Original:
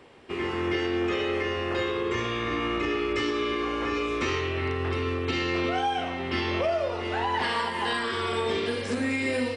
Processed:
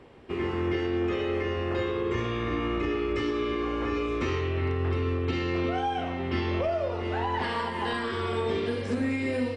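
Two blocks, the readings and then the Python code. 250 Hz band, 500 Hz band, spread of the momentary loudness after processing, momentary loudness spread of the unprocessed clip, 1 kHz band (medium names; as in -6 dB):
+0.5 dB, -0.5 dB, 2 LU, 2 LU, -2.5 dB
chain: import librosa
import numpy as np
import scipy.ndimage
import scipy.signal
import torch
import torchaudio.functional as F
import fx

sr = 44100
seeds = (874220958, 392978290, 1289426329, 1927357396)

p1 = fx.tilt_eq(x, sr, slope=-2.0)
p2 = fx.rider(p1, sr, range_db=3, speed_s=0.5)
p3 = p1 + (p2 * librosa.db_to_amplitude(-1.0))
y = p3 * librosa.db_to_amplitude(-8.5)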